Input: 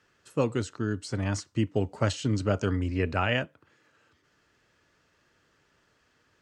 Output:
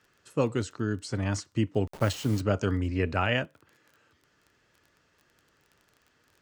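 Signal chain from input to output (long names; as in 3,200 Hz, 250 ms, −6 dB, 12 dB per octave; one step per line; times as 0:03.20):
0:01.87–0:02.41: hold until the input has moved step −39 dBFS
surface crackle 21 per second −44 dBFS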